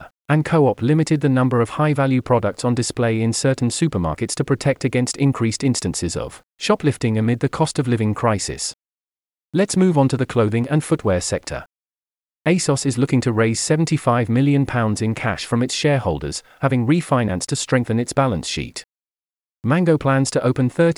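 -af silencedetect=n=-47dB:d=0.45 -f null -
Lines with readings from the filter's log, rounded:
silence_start: 8.74
silence_end: 9.54 | silence_duration: 0.80
silence_start: 11.66
silence_end: 12.46 | silence_duration: 0.80
silence_start: 18.84
silence_end: 19.64 | silence_duration: 0.80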